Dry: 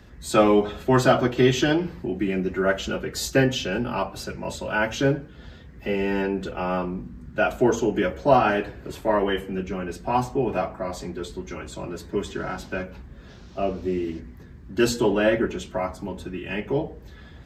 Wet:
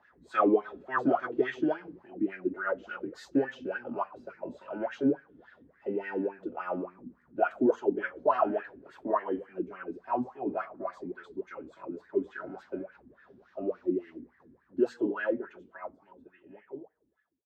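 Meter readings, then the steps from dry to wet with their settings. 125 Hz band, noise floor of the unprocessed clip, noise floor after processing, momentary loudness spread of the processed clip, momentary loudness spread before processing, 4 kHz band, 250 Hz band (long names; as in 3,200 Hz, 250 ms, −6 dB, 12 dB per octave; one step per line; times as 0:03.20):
−21.0 dB, −45 dBFS, −68 dBFS, 17 LU, 15 LU, below −20 dB, −7.0 dB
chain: fade-out on the ending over 3.36 s
LFO wah 3.5 Hz 260–1,800 Hz, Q 6.4
level +3 dB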